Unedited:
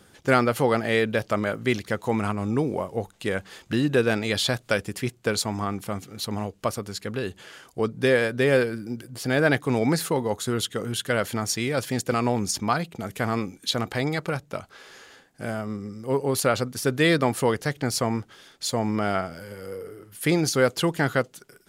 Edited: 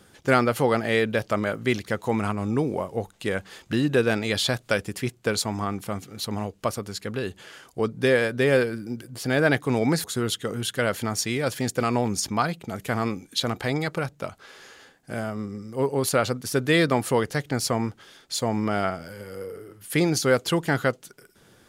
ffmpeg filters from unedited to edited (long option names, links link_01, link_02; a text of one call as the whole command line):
ffmpeg -i in.wav -filter_complex "[0:a]asplit=2[link_01][link_02];[link_01]atrim=end=10.042[link_03];[link_02]atrim=start=10.348[link_04];[link_03][link_04]acrossfade=duration=0.004:curve1=hsin:curve2=hsin" out.wav